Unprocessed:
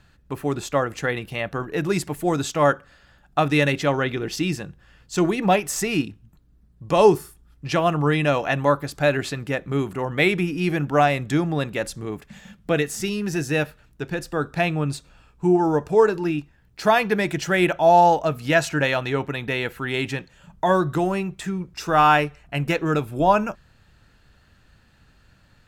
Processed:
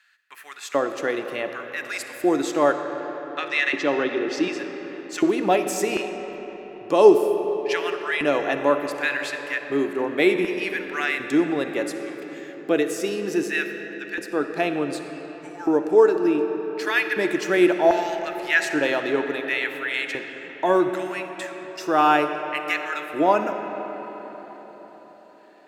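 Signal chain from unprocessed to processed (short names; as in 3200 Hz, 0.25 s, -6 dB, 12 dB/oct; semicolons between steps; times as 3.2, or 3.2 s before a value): LFO high-pass square 0.67 Hz 330–1800 Hz; 2.73–4.59 Chebyshev band-pass 160–5700 Hz, order 2; digital reverb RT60 5 s, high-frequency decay 0.55×, pre-delay 15 ms, DRR 6.5 dB; gain -3.5 dB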